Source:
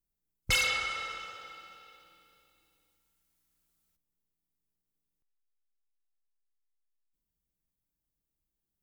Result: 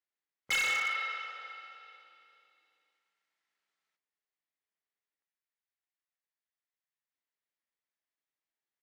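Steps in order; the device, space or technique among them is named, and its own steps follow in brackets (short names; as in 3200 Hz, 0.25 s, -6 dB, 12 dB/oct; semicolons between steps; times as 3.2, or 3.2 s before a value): megaphone (BPF 590–3800 Hz; bell 1900 Hz +7.5 dB 0.44 oct; hard clip -27 dBFS, distortion -9 dB; doubler 38 ms -14 dB)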